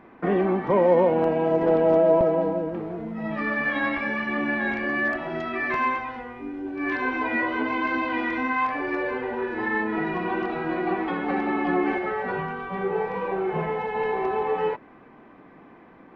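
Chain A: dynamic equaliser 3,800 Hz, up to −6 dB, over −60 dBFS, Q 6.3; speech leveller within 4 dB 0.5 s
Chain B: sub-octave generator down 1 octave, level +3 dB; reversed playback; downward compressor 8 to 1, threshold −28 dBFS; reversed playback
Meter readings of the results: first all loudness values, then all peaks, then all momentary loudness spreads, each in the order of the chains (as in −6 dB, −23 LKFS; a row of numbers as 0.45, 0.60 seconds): −25.0, −32.0 LKFS; −11.5, −19.5 dBFS; 4, 3 LU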